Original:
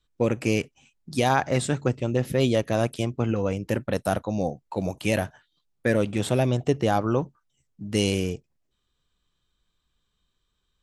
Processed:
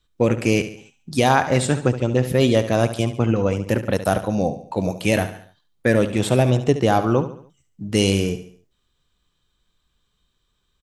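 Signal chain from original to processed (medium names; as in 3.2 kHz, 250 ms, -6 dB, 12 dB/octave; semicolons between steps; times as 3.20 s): feedback delay 71 ms, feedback 44%, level -12 dB; trim +5 dB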